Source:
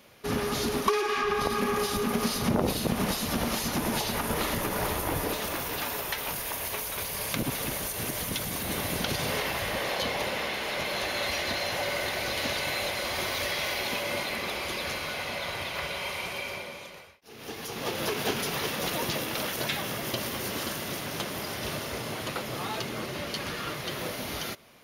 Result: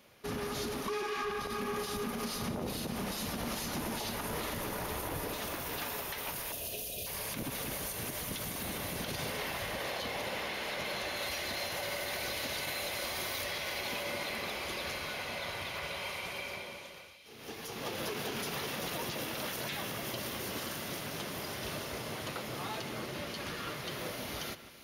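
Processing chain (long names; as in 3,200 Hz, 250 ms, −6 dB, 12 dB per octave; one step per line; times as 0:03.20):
0:06.52–0:07.07: time-frequency box erased 740–2,400 Hz
0:11.16–0:13.44: high-shelf EQ 7,800 Hz +8 dB
brickwall limiter −22 dBFS, peak gain reduction 10 dB
echo with a time of its own for lows and highs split 2,500 Hz, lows 150 ms, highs 600 ms, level −13 dB
level −5.5 dB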